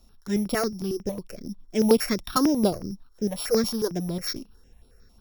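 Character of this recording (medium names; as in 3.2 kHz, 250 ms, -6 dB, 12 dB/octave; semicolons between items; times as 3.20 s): a buzz of ramps at a fixed pitch in blocks of 8 samples; notches that jump at a steady rate 11 Hz 440–6300 Hz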